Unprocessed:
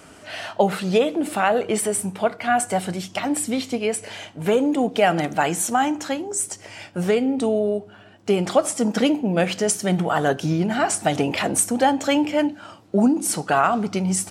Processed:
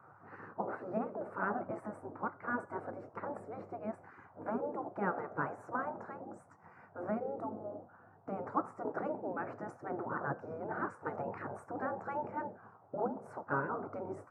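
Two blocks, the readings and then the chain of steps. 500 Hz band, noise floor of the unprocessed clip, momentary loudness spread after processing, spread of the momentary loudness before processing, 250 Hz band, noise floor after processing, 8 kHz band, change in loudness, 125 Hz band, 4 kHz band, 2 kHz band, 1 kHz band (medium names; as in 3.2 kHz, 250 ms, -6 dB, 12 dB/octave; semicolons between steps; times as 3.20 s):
-18.0 dB, -47 dBFS, 11 LU, 8 LU, -21.0 dB, -61 dBFS, under -40 dB, -18.5 dB, -20.0 dB, under -40 dB, -15.5 dB, -15.0 dB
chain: elliptic band-pass 110–1300 Hz, stop band 40 dB; band noise 190–630 Hz -45 dBFS; spectral gate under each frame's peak -10 dB weak; trim -6 dB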